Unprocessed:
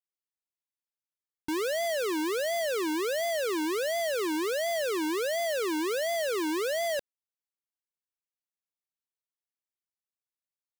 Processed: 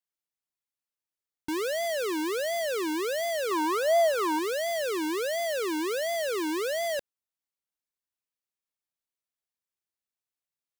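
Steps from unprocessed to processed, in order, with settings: 3.51–4.39 s: high-order bell 930 Hz +10 dB 1.3 oct

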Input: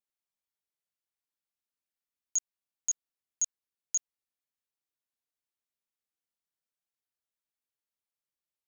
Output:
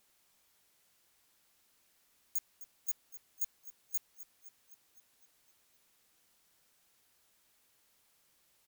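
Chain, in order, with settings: sine folder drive 13 dB, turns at -22 dBFS; frequency-shifting echo 256 ms, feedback 63%, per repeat -48 Hz, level -15 dB; trim +5 dB

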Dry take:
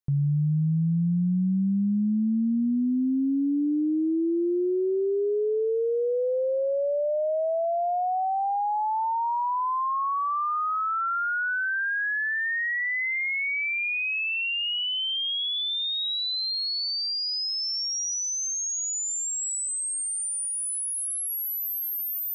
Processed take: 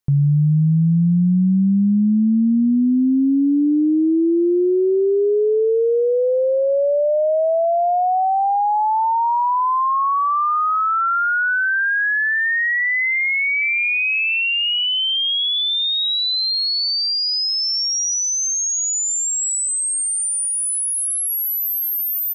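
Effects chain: 6.00–6.70 s: dynamic bell 1.9 kHz, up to -3 dB, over -45 dBFS, Q 0.81; 13.14–13.92 s: echo throw 470 ms, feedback 15%, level -14.5 dB; trim +8.5 dB

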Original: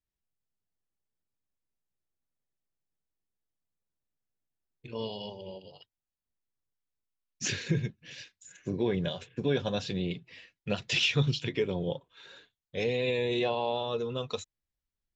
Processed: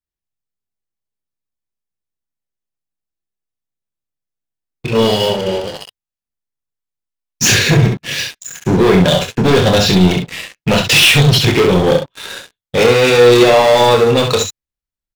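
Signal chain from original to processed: waveshaping leveller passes 5; early reflections 27 ms -7 dB, 66 ms -5.5 dB; trim +7 dB

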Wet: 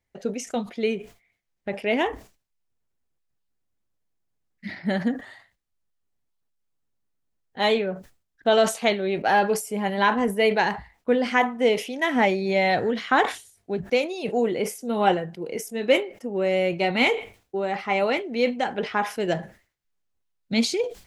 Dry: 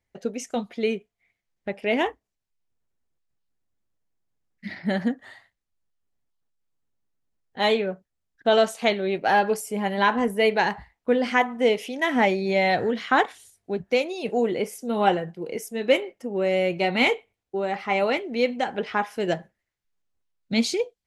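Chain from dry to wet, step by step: decay stretcher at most 150 dB/s

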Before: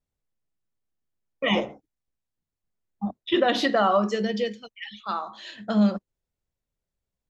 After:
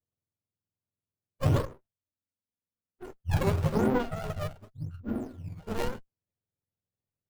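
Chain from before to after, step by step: spectrum inverted on a logarithmic axis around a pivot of 540 Hz; low-pass sweep 670 Hz -> 3.6 kHz, 2.77–4.08 s; in parallel at -4 dB: decimation with a swept rate 11×, swing 160% 0.94 Hz; 1.65–3.19 s: on the sum: touch-sensitive flanger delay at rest 4.1 ms, full sweep at -32.5 dBFS; sliding maximum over 33 samples; trim -7 dB

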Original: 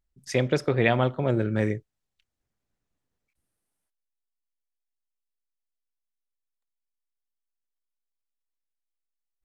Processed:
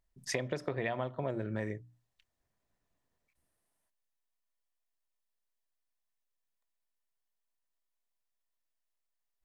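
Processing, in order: hum notches 60/120/180/240/300 Hz; compression 20:1, threshold -32 dBFS, peak gain reduction 17 dB; small resonant body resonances 660/990/1800 Hz, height 7 dB, ringing for 20 ms

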